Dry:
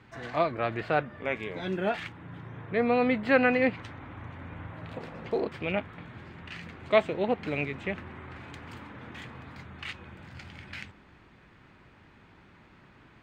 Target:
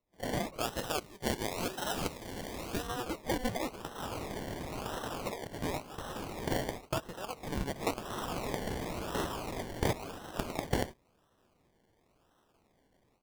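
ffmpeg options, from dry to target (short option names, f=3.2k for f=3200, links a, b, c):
-filter_complex "[0:a]dynaudnorm=f=130:g=3:m=16dB,agate=range=-22dB:threshold=-30dB:ratio=16:detection=peak,acompressor=threshold=-23dB:ratio=6,highpass=1.2k,acrusher=samples=27:mix=1:aa=0.000001:lfo=1:lforange=16.2:lforate=0.95,asettb=1/sr,asplit=3[a][b][c];[a]atrim=end=0.514[d];[b]atrim=start=0.51:end=2.87,asetpts=PTS-STARTPTS,afade=t=in:d=0.004:c=qsin,afade=t=out:st=2.356:d=0.004:c=qsin,adynamicequalizer=threshold=0.00398:dfrequency=2500:dqfactor=0.7:tfrequency=2500:tqfactor=0.7:attack=5:release=100:ratio=0.375:range=2.5:mode=boostabove:tftype=highshelf[e];[c]atrim=start=2.866[f];[d][e]acrossfade=d=0.004:c1=hsin:c2=qsin[g];[g][f]acrossfade=d=0.004:c1=qsin:c2=hsin,volume=-1.5dB"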